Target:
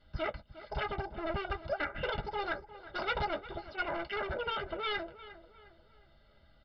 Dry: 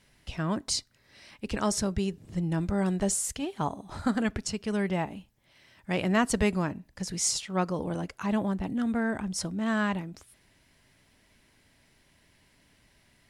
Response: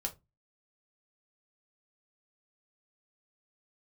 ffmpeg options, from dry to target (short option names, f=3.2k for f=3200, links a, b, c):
-filter_complex "[1:a]atrim=start_sample=2205,atrim=end_sample=3087[a];[0:a][a]afir=irnorm=-1:irlink=0,asetrate=88200,aresample=44100,aresample=11025,volume=26.5dB,asoftclip=hard,volume=-26.5dB,aresample=44100,bass=f=250:g=-3,treble=f=4k:g=-13,aecho=1:1:1.4:0.74,asplit=2[b][c];[c]adelay=356,lowpass=f=2.6k:p=1,volume=-15dB,asplit=2[d][e];[e]adelay=356,lowpass=f=2.6k:p=1,volume=0.43,asplit=2[f][g];[g]adelay=356,lowpass=f=2.6k:p=1,volume=0.43,asplit=2[h][i];[i]adelay=356,lowpass=f=2.6k:p=1,volume=0.43[j];[b][d][f][h][j]amix=inputs=5:normalize=0,volume=-2.5dB"